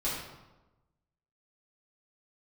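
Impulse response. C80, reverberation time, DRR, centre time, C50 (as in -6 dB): 4.0 dB, 1.1 s, -9.0 dB, 63 ms, 1.0 dB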